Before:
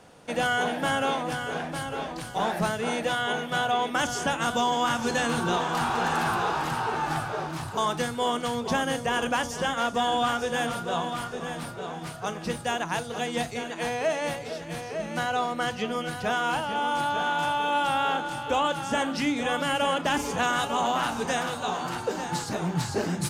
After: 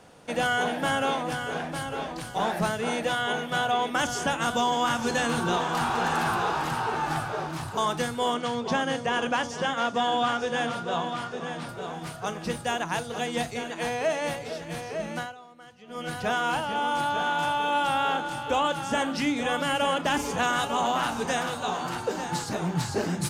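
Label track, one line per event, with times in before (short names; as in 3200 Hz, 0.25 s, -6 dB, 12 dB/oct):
8.340000	11.690000	BPF 110–6300 Hz
15.100000	16.110000	dip -21 dB, fades 0.25 s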